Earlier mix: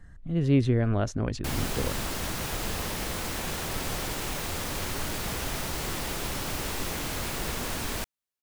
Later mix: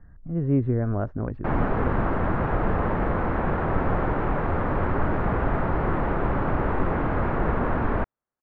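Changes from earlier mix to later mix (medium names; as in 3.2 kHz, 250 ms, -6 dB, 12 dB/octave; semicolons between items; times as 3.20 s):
background +10.5 dB; master: add low-pass 1.5 kHz 24 dB/octave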